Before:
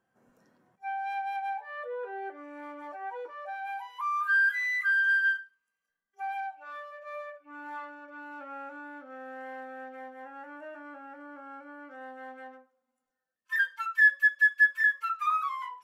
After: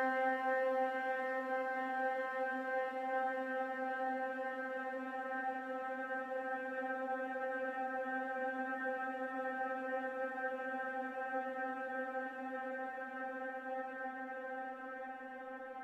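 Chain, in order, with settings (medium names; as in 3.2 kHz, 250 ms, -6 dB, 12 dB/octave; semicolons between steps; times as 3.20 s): level held to a coarse grid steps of 21 dB; Paulstretch 42×, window 0.50 s, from 9.60 s; trim +8 dB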